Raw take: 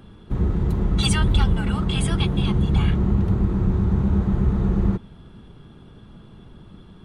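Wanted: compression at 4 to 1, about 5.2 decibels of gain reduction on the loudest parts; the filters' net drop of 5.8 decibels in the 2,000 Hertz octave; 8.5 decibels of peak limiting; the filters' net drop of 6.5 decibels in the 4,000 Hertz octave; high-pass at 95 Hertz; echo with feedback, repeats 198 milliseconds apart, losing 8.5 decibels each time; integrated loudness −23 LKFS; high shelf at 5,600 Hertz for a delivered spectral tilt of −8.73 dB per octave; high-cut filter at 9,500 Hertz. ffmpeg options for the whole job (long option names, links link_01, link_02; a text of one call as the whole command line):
ffmpeg -i in.wav -af "highpass=95,lowpass=9500,equalizer=frequency=2000:width_type=o:gain=-6.5,equalizer=frequency=4000:width_type=o:gain=-3.5,highshelf=frequency=5600:gain=-6.5,acompressor=threshold=-24dB:ratio=4,alimiter=limit=-24dB:level=0:latency=1,aecho=1:1:198|396|594|792:0.376|0.143|0.0543|0.0206,volume=8.5dB" out.wav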